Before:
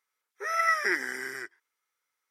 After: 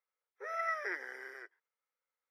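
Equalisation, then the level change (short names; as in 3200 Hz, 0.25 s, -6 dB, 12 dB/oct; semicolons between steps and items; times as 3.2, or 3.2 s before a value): ladder high-pass 450 Hz, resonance 55%; high shelf 4100 Hz -11 dB; bell 7800 Hz -13 dB 0.33 oct; 0.0 dB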